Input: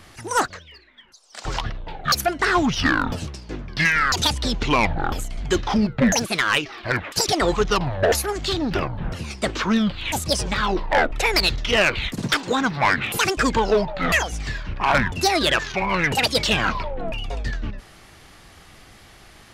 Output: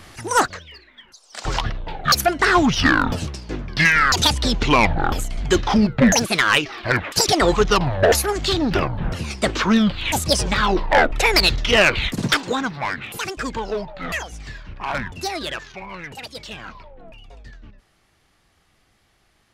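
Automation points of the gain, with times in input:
12.28 s +3.5 dB
12.89 s -7 dB
15.28 s -7 dB
16.15 s -15 dB

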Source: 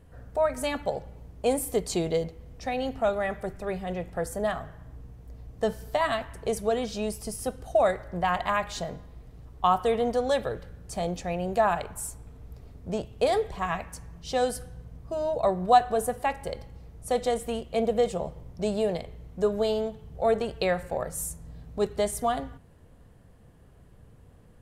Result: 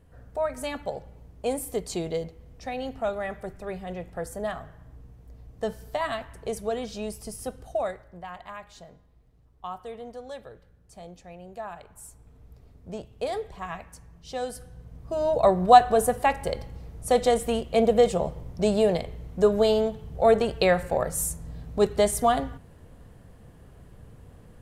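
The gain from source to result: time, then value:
7.62 s -3 dB
8.27 s -14 dB
11.73 s -14 dB
12.37 s -6 dB
14.46 s -6 dB
15.37 s +5 dB

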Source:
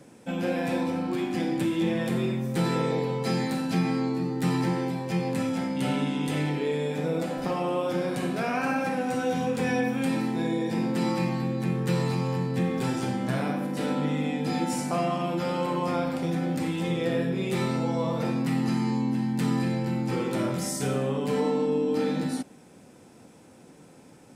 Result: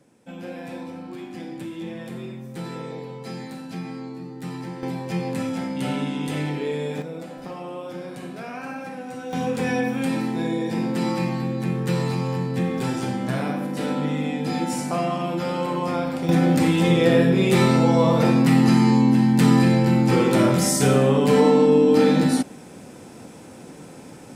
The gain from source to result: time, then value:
-7.5 dB
from 4.83 s +1 dB
from 7.02 s -6.5 dB
from 9.33 s +2.5 dB
from 16.29 s +10 dB

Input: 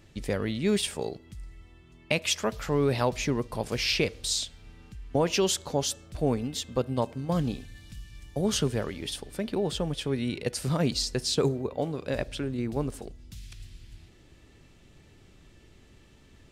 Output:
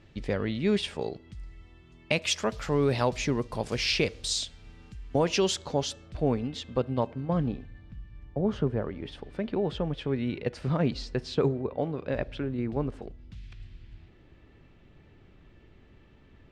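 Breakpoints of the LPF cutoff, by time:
0.91 s 4000 Hz
2.41 s 7700 Hz
5.16 s 7700 Hz
6.3 s 3500 Hz
6.85 s 3500 Hz
7.86 s 1300 Hz
8.87 s 1300 Hz
9.28 s 2500 Hz

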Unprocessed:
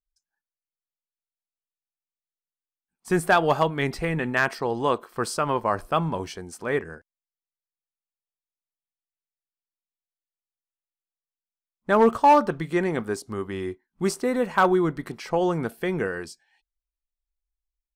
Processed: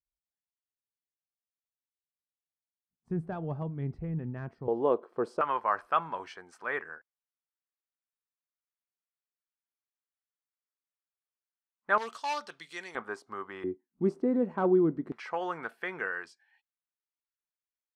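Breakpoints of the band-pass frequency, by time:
band-pass, Q 1.4
100 Hz
from 4.68 s 440 Hz
from 5.41 s 1400 Hz
from 11.98 s 4600 Hz
from 12.95 s 1200 Hz
from 13.64 s 280 Hz
from 15.12 s 1500 Hz

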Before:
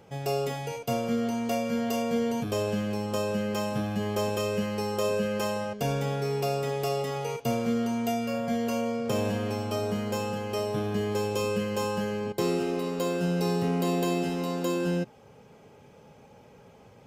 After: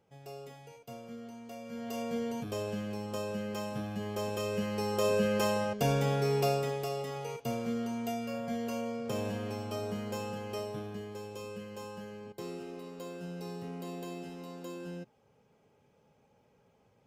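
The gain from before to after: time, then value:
1.54 s -17.5 dB
2.02 s -7.5 dB
4.14 s -7.5 dB
5.25 s 0 dB
6.47 s 0 dB
6.88 s -7 dB
10.54 s -7 dB
11.12 s -14.5 dB

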